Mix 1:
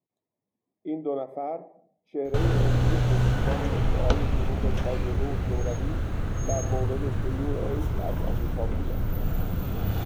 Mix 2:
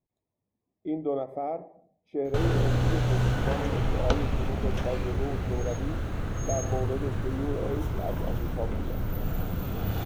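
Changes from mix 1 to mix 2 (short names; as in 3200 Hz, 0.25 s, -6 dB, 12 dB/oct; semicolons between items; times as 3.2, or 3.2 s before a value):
speech: remove HPF 160 Hz; background: add low shelf 140 Hz -4 dB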